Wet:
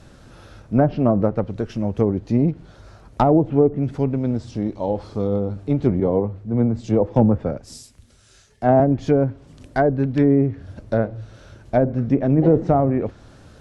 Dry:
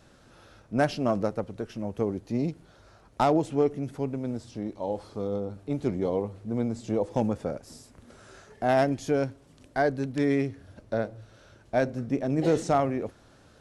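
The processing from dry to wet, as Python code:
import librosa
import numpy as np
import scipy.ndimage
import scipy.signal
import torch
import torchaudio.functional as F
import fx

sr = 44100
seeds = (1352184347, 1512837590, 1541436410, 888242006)

y = fx.env_lowpass_down(x, sr, base_hz=770.0, full_db=-20.0)
y = fx.low_shelf(y, sr, hz=190.0, db=8.5)
y = fx.band_widen(y, sr, depth_pct=70, at=(6.0, 8.8))
y = F.gain(torch.from_numpy(y), 6.5).numpy()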